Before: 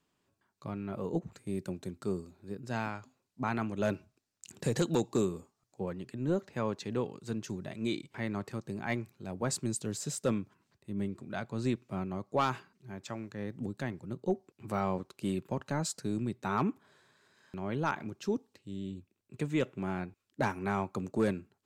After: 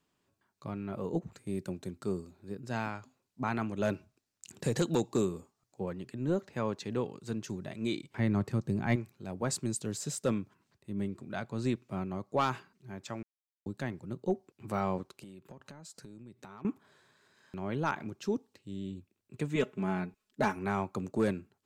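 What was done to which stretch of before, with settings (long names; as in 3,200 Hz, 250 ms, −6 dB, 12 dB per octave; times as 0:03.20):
0:08.19–0:08.96: low-shelf EQ 270 Hz +11.5 dB
0:13.23–0:13.66: silence
0:15.11–0:16.65: downward compressor 16 to 1, threshold −45 dBFS
0:19.55–0:20.56: comb filter 4.7 ms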